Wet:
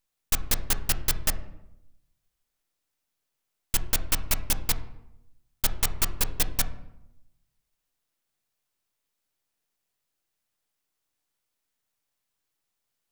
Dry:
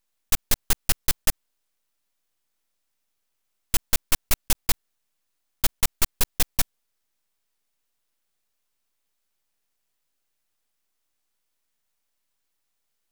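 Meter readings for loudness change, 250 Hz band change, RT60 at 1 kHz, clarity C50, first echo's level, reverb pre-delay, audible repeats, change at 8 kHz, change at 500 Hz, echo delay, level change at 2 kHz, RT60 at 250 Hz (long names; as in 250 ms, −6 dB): −2.5 dB, −1.0 dB, 0.80 s, 15.5 dB, no echo audible, 5 ms, no echo audible, −2.5 dB, −1.0 dB, no echo audible, −2.0 dB, 1.0 s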